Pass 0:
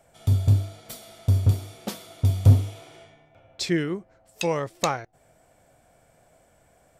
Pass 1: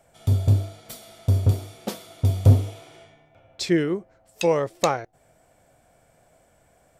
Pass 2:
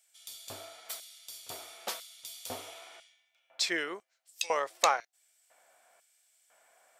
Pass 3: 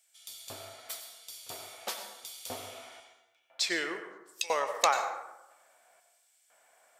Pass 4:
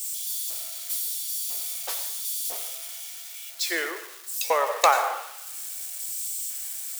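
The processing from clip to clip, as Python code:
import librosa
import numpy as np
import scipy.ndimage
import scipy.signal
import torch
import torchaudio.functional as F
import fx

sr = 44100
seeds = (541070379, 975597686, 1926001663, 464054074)

y1 = fx.dynamic_eq(x, sr, hz=480.0, q=0.95, threshold_db=-39.0, ratio=4.0, max_db=6)
y2 = fx.filter_lfo_highpass(y1, sr, shape='square', hz=1.0, low_hz=960.0, high_hz=3600.0, q=0.87)
y3 = fx.rev_plate(y2, sr, seeds[0], rt60_s=0.95, hf_ratio=0.5, predelay_ms=80, drr_db=7.0)
y4 = y3 + 0.5 * 10.0 ** (-24.5 / 20.0) * np.diff(np.sign(y3), prepend=np.sign(y3[:1]))
y4 = scipy.signal.sosfilt(scipy.signal.butter(4, 360.0, 'highpass', fs=sr, output='sos'), y4)
y4 = fx.band_widen(y4, sr, depth_pct=100)
y4 = y4 * 10.0 ** (-1.5 / 20.0)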